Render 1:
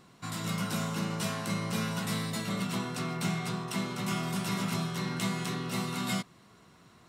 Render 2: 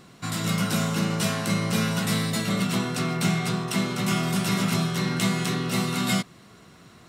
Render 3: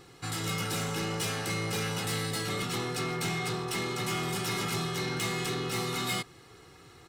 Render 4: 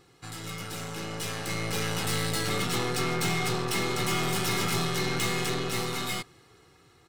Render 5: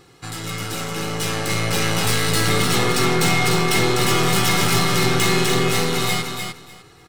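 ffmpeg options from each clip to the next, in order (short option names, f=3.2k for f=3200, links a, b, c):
-af "equalizer=f=970:w=3.1:g=-4.5,volume=8dB"
-af "aecho=1:1:2.4:0.77,asoftclip=type=tanh:threshold=-23dB,volume=-3.5dB"
-af "dynaudnorm=f=360:g=9:m=9.5dB,aeval=exprs='0.141*(cos(1*acos(clip(val(0)/0.141,-1,1)))-cos(1*PI/2))+0.0282*(cos(4*acos(clip(val(0)/0.141,-1,1)))-cos(4*PI/2))':c=same,volume=-6dB"
-af "aecho=1:1:300|600|900:0.531|0.0903|0.0153,volume=9dB"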